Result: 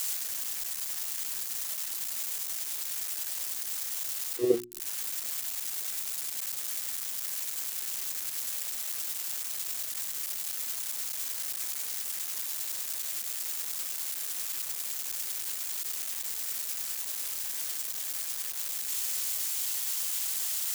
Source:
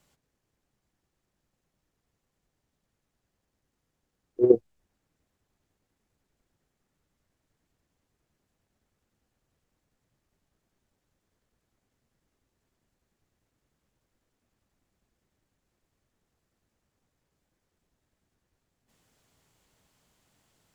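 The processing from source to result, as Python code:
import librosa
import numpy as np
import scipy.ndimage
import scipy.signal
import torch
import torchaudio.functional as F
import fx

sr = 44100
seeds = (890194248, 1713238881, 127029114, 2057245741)

y = x + 0.5 * 10.0 ** (-19.0 / 20.0) * np.diff(np.sign(x), prepend=np.sign(x[:1]))
y = fx.hum_notches(y, sr, base_hz=60, count=6)
y = y * librosa.db_to_amplitude(-5.5)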